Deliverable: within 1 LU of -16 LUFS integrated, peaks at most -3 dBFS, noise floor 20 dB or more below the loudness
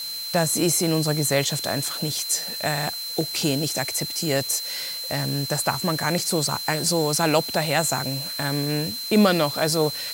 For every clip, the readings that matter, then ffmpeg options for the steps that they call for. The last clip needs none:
steady tone 4.1 kHz; tone level -30 dBFS; noise floor -32 dBFS; noise floor target -43 dBFS; loudness -23.0 LUFS; peak level -5.0 dBFS; loudness target -16.0 LUFS
-> -af "bandreject=f=4100:w=30"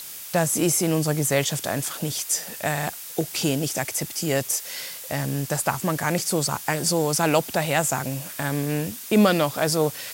steady tone not found; noise floor -38 dBFS; noise floor target -44 dBFS
-> -af "afftdn=nr=6:nf=-38"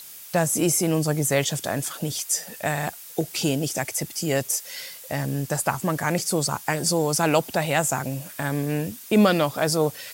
noise floor -42 dBFS; noise floor target -44 dBFS
-> -af "afftdn=nr=6:nf=-42"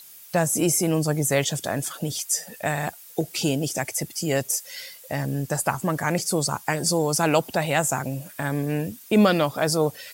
noise floor -46 dBFS; loudness -24.0 LUFS; peak level -6.0 dBFS; loudness target -16.0 LUFS
-> -af "volume=2.51,alimiter=limit=0.708:level=0:latency=1"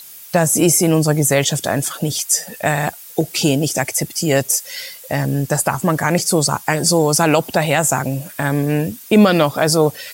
loudness -16.5 LUFS; peak level -3.0 dBFS; noise floor -38 dBFS

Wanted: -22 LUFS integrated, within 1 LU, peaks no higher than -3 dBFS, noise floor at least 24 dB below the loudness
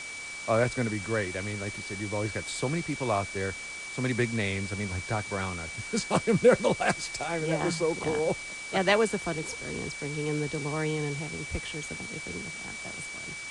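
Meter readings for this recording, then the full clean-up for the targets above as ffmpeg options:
steady tone 2.3 kHz; tone level -38 dBFS; noise floor -40 dBFS; noise floor target -54 dBFS; loudness -30.0 LUFS; peak level -9.5 dBFS; loudness target -22.0 LUFS
-> -af "bandreject=f=2300:w=30"
-af "afftdn=nr=14:nf=-40"
-af "volume=2.51,alimiter=limit=0.708:level=0:latency=1"

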